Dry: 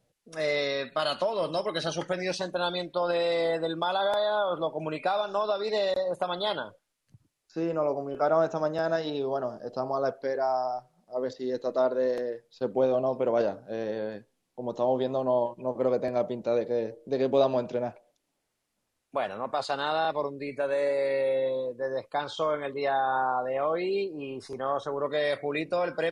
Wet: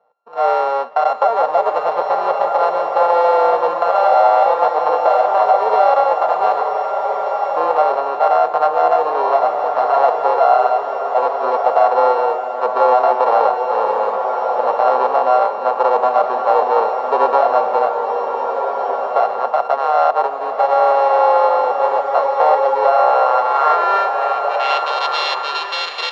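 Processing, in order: sorted samples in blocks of 32 samples; cabinet simulation 260–5300 Hz, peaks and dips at 310 Hz -9 dB, 470 Hz +7 dB, 750 Hz +3 dB, 1.1 kHz +8 dB, 2.6 kHz -4 dB; band-pass sweep 720 Hz -> 3.5 kHz, 23.12–24.94 s; loudness maximiser +20 dB; swelling reverb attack 1580 ms, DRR 3 dB; trim -4 dB

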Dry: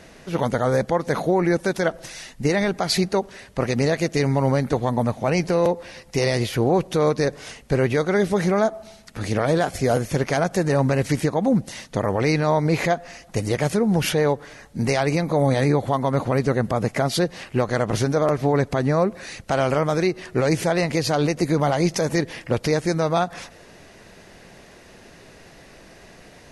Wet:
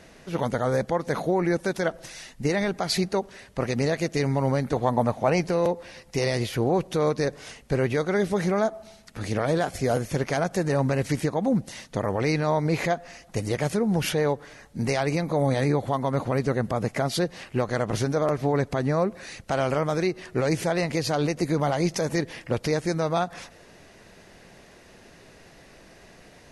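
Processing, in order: 4.76–5.42 s: peaking EQ 800 Hz +5.5 dB 2 oct; trim -4 dB

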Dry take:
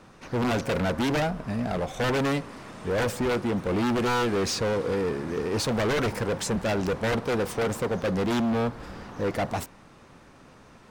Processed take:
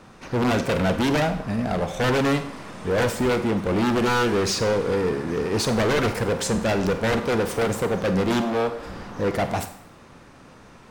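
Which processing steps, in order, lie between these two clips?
8.41–8.86 s: resonant low shelf 260 Hz -7.5 dB, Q 1.5; Schroeder reverb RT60 0.59 s, combs from 32 ms, DRR 9 dB; trim +3.5 dB

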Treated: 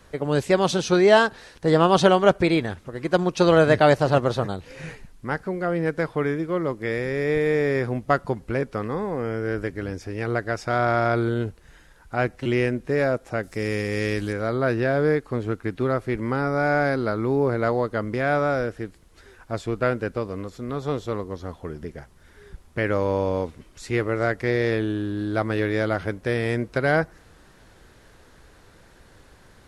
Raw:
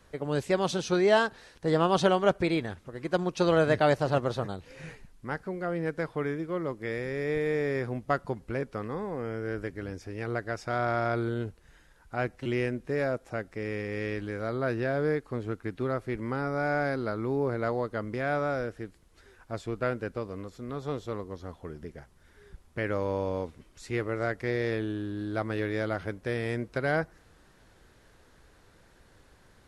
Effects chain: 13.43–14.33 s: tone controls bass +2 dB, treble +12 dB; trim +7 dB

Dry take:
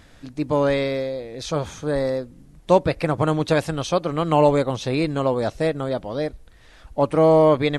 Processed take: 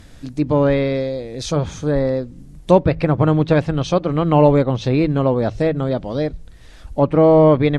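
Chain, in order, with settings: bass shelf 410 Hz +10.5 dB; low-pass that closes with the level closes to 2.7 kHz, closed at -12.5 dBFS; treble shelf 3.4 kHz +8.5 dB; de-hum 53.83 Hz, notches 3; trim -1 dB

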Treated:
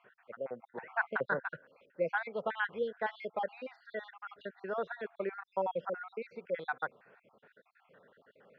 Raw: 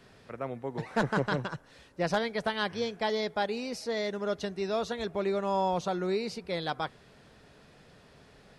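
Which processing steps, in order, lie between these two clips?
random holes in the spectrogram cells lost 55%; cabinet simulation 240–2600 Hz, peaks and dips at 300 Hz -5 dB, 520 Hz +7 dB, 1.5 kHz +9 dB; trim -4.5 dB

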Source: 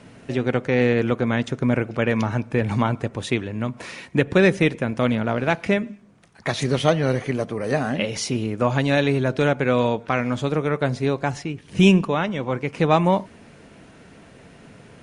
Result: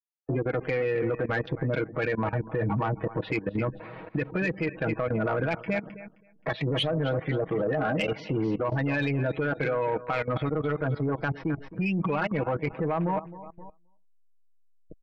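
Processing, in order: send-on-delta sampling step -33.5 dBFS; low-pass 4.8 kHz 24 dB/octave; spectral gate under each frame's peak -20 dB strong; level-controlled noise filter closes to 570 Hz, open at -14.5 dBFS; tilt EQ +2 dB/octave; compression 6:1, threshold -25 dBFS, peak gain reduction 12 dB; comb 6.3 ms, depth 74%; feedback delay 263 ms, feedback 24%, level -14 dB; level held to a coarse grid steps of 17 dB; saturation -27.5 dBFS, distortion -18 dB; trim +9 dB

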